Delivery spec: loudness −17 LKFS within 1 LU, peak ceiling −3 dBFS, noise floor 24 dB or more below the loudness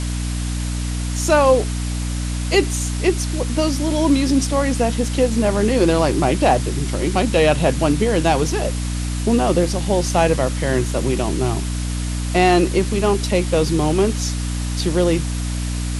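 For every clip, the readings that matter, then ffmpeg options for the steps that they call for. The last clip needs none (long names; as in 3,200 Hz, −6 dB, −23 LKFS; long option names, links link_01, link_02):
mains hum 60 Hz; hum harmonics up to 300 Hz; level of the hum −21 dBFS; background noise floor −23 dBFS; target noise floor −43 dBFS; integrated loudness −19.0 LKFS; sample peak −3.5 dBFS; target loudness −17.0 LKFS
→ -af "bandreject=frequency=60:width_type=h:width=6,bandreject=frequency=120:width_type=h:width=6,bandreject=frequency=180:width_type=h:width=6,bandreject=frequency=240:width_type=h:width=6,bandreject=frequency=300:width_type=h:width=6"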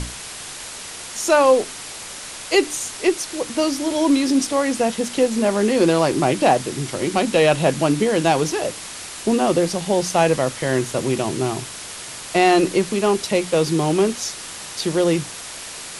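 mains hum none found; background noise floor −34 dBFS; target noise floor −44 dBFS
→ -af "afftdn=noise_reduction=10:noise_floor=-34"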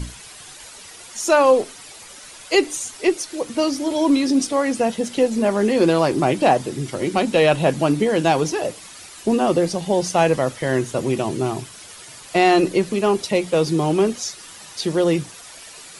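background noise floor −41 dBFS; target noise floor −44 dBFS
→ -af "afftdn=noise_reduction=6:noise_floor=-41"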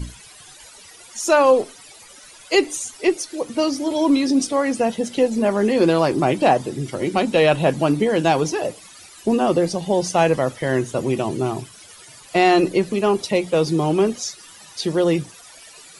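background noise floor −45 dBFS; integrated loudness −19.5 LKFS; sample peak −4.5 dBFS; target loudness −17.0 LKFS
→ -af "volume=2.5dB,alimiter=limit=-3dB:level=0:latency=1"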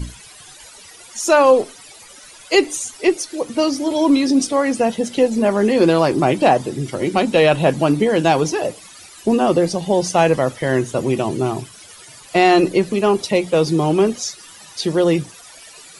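integrated loudness −17.5 LKFS; sample peak −3.0 dBFS; background noise floor −42 dBFS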